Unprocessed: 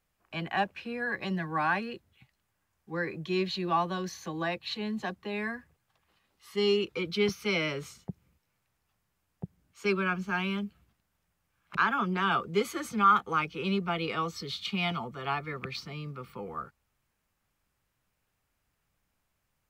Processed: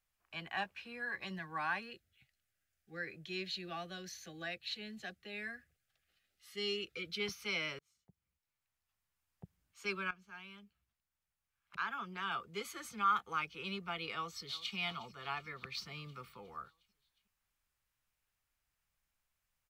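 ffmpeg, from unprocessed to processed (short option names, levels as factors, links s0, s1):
-filter_complex "[0:a]asettb=1/sr,asplit=3[s0][s1][s2];[s0]atrim=end=0.544[s3];[s1]atrim=start=0.54:end=1.39,asetpts=PTS-STARTPTS,afade=t=in:d=0.004:c=qsin,afade=t=out:st=0.846:d=0.004:c=qsin,asplit=2[s4][s5];[s5]adelay=16,volume=0.282[s6];[s4][s6]amix=inputs=2:normalize=0,atrim=end_sample=37485[s7];[s2]atrim=start=1.386[s8];[s3][s7]acrossfade=d=0.004:c1=hsin:c2=qsin[s9];[s9][s8]acrossfade=d=0.004:c1=qsin:c2=hsin,asettb=1/sr,asplit=3[s10][s11][s12];[s10]atrim=end=1.914[s13];[s11]atrim=start=1.91:end=7.2,asetpts=PTS-STARTPTS,afade=t=in:d=0.004:c=qsin,afade=t=out:st=5.286:d=0.004:c=qsin,asuperstop=centerf=980:order=4:qfactor=1.9[s14];[s12]atrim=start=7.196[s15];[s13][s14]acrossfade=d=0.004:c1=hsin:c2=qsin[s16];[s16][s15]acrossfade=d=0.004:c1=qsin:c2=hsin,asplit=2[s17][s18];[s18]afade=t=in:st=14.12:d=0.01,afade=t=out:st=14.75:d=0.01,aecho=0:1:360|720|1080|1440|1800|2160|2520:0.141254|0.0918149|0.0596797|0.0387918|0.0252147|0.0163895|0.0106532[s19];[s17][s19]amix=inputs=2:normalize=0,asplit=5[s20][s21][s22][s23][s24];[s20]atrim=end=7.79,asetpts=PTS-STARTPTS,afade=t=out:st=7.786:d=0.004:c=hsin[s25];[s21]atrim=start=7.79:end=10.11,asetpts=PTS-STARTPTS,afade=t=in:d=1.65,afade=t=out:st=2.316:d=0.004:c=hsin:silence=0.188365[s26];[s22]atrim=start=10.11:end=15.772,asetpts=PTS-STARTPTS,afade=t=in:d=3.33:silence=0.188365[s27];[s23]atrim=start=15.768:end=16.292,asetpts=PTS-STARTPTS,volume=1.5[s28];[s24]atrim=start=16.288[s29];[s25][s26][s27]concat=n=3:v=0:a=1[s30];[s30][s28]acrossfade=d=0.004:c1=hsin:c2=hsin[s31];[s31][s29]acrossfade=d=0.004:c1=hsin:c2=hsin,equalizer=f=250:w=0.3:g=-11,volume=0.596"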